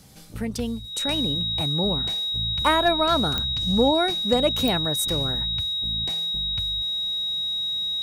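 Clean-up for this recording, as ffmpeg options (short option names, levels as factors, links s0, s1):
-af "adeclick=t=4,bandreject=f=3800:w=30"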